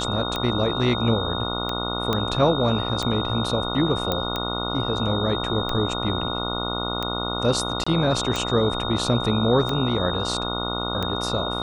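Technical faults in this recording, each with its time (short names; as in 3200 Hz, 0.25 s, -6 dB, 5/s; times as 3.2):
buzz 60 Hz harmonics 24 -29 dBFS
tick 45 rpm -12 dBFS
tone 3700 Hz -29 dBFS
2.13 pop -10 dBFS
4.12 pop -9 dBFS
7.84–7.87 gap 25 ms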